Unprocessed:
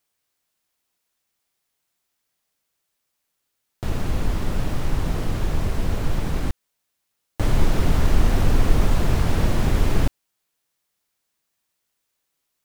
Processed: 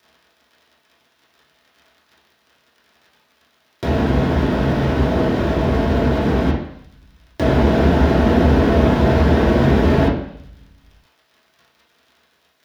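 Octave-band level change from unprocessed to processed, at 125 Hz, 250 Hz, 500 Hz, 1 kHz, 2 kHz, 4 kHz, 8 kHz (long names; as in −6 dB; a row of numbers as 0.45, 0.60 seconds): +6.0 dB, +12.0 dB, +13.5 dB, +10.0 dB, +8.5 dB, +5.0 dB, can't be measured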